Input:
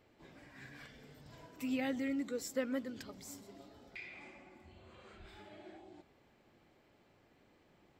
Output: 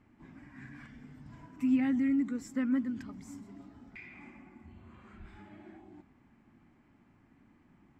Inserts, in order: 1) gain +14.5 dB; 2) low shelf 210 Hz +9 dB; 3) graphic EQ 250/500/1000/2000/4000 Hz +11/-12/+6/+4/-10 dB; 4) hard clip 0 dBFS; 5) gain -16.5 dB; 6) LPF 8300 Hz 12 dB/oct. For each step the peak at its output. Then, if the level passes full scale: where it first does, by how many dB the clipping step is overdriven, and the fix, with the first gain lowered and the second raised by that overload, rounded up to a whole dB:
-10.0, -9.0, -2.5, -2.5, -19.0, -19.0 dBFS; no overload

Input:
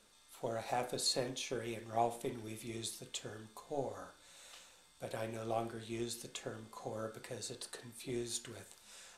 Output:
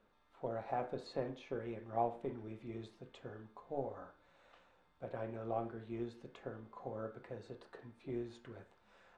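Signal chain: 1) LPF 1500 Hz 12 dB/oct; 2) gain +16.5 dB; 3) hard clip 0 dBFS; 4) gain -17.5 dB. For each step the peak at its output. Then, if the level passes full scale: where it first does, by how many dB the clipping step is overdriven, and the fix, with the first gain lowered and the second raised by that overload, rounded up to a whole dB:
-21.5, -5.0, -5.0, -22.5 dBFS; no overload

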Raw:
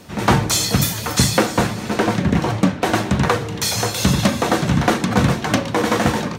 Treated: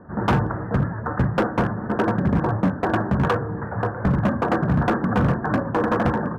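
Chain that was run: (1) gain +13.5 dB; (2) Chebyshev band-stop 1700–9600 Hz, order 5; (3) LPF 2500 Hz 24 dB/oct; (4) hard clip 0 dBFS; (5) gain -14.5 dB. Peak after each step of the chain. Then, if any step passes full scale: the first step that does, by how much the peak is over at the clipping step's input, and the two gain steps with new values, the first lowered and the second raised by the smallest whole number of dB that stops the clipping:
+8.5, +9.5, +9.5, 0.0, -14.5 dBFS; step 1, 9.5 dB; step 1 +3.5 dB, step 5 -4.5 dB

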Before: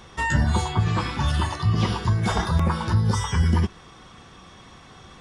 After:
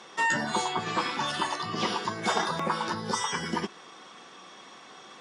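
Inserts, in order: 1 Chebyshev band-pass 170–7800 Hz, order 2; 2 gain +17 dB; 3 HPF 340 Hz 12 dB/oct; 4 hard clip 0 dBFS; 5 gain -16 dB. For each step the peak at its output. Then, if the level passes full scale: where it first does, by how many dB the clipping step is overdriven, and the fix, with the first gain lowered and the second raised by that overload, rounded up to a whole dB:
-10.5, +6.5, +4.5, 0.0, -16.0 dBFS; step 2, 4.5 dB; step 2 +12 dB, step 5 -11 dB

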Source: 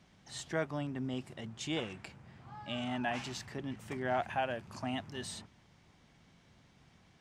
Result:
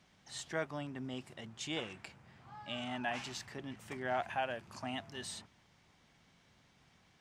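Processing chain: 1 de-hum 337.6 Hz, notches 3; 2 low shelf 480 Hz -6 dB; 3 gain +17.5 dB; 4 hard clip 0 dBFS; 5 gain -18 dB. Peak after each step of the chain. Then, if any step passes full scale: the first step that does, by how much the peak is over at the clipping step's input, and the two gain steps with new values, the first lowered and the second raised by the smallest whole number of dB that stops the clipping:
-22.0, -23.0, -5.5, -5.5, -23.5 dBFS; no overload

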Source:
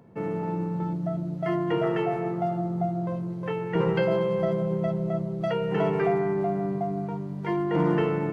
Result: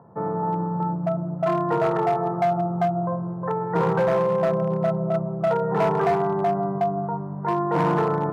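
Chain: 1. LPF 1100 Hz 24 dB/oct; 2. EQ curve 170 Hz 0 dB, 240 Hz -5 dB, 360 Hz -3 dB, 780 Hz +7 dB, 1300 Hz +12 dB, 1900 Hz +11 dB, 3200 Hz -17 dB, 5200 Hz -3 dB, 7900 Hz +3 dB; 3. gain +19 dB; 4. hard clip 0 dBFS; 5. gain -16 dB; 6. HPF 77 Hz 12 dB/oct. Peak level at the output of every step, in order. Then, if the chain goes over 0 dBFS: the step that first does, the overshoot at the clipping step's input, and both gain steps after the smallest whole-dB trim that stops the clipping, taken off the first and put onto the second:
-13.5, -10.5, +8.5, 0.0, -16.0, -12.5 dBFS; step 3, 8.5 dB; step 3 +10 dB, step 5 -7 dB

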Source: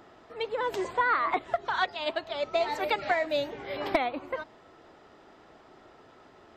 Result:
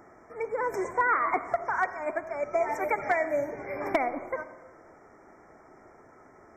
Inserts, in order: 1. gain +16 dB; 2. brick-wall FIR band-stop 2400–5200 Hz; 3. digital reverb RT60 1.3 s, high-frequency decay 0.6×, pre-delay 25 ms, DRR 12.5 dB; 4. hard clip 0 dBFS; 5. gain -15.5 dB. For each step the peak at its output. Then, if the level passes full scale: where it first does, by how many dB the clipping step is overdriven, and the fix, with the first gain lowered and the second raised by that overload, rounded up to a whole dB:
+3.5, +4.0, +4.0, 0.0, -15.5 dBFS; step 1, 4.0 dB; step 1 +12 dB, step 5 -11.5 dB

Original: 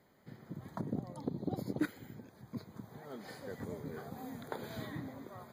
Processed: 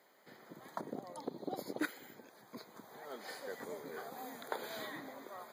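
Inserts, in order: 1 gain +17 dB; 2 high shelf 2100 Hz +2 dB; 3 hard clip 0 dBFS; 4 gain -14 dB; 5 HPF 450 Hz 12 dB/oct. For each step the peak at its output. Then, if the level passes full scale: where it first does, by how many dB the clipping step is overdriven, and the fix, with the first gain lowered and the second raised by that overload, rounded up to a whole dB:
-3.5, -3.5, -3.5, -17.5, -21.5 dBFS; no overload

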